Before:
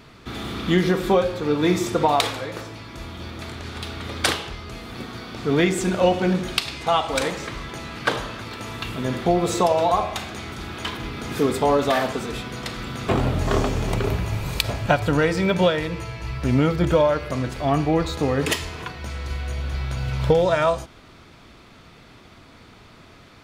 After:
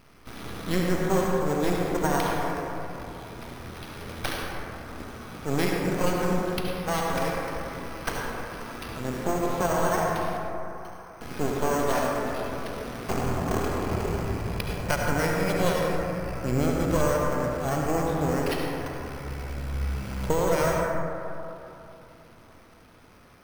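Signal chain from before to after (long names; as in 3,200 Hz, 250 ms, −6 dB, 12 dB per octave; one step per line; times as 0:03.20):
tape wow and flutter 15 cents
half-wave rectification
0:10.37–0:11.21: four-pole ladder band-pass 1,300 Hz, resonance 35%
bad sample-rate conversion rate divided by 6×, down filtered, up hold
convolution reverb RT60 3.0 s, pre-delay 63 ms, DRR −1 dB
level −4.5 dB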